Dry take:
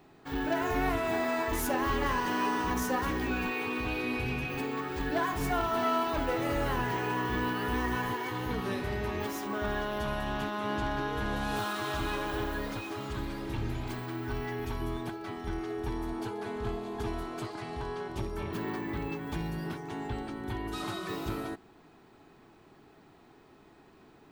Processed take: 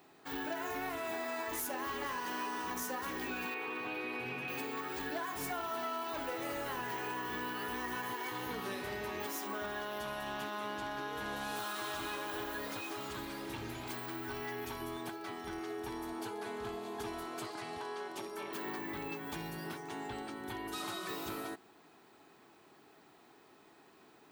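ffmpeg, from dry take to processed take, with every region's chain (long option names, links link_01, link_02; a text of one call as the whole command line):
ffmpeg -i in.wav -filter_complex "[0:a]asettb=1/sr,asplit=3[link_01][link_02][link_03];[link_01]atrim=end=3.544[link_04];[link_02]atrim=start=3.54:end=4.48,asetpts=PTS-STARTPTS,afade=type=in:duration=0.004:curve=qsin,afade=type=out:start_time=0.936:duration=0.004:curve=qsin,acrossover=split=3000[link_05][link_06];[link_06]acompressor=threshold=-57dB:ratio=4:attack=1:release=60[link_07];[link_05][link_07]amix=inputs=2:normalize=0,highpass=frequency=110:width=0.5412,highpass=frequency=110:width=1.3066,bandreject=frequency=50:width_type=h:width=6,bandreject=frequency=100:width_type=h:width=6,bandreject=frequency=150:width_type=h:width=6,bandreject=frequency=200:width_type=h:width=6,bandreject=frequency=250:width_type=h:width=6[link_08];[link_03]atrim=start=4.476[link_09];[link_04][link_08]acrossfade=duration=0.004:curve1=hsin:curve2=qsin[link_10];[link_10][link_09]acrossfade=duration=0.004:curve1=qsin:curve2=hsin,asettb=1/sr,asplit=3[link_11][link_12][link_13];[link_11]atrim=end=17.784[link_14];[link_12]atrim=start=17.78:end=18.66,asetpts=PTS-STARTPTS,afade=type=in:duration=0.004:curve=qsin,afade=type=out:start_time=0.876:duration=0.004:curve=qsin,highpass=250,equalizer=frequency=15000:width=5.8:gain=-12[link_15];[link_13]atrim=start=18.656[link_16];[link_14][link_15]acrossfade=duration=0.004:curve1=hsin:curve2=qsin[link_17];[link_17][link_16]acrossfade=duration=0.004:curve1=qsin:curve2=hsin,highpass=frequency=390:poles=1,highshelf=frequency=6600:gain=8,acompressor=threshold=-34dB:ratio=6,volume=-1.5dB" out.wav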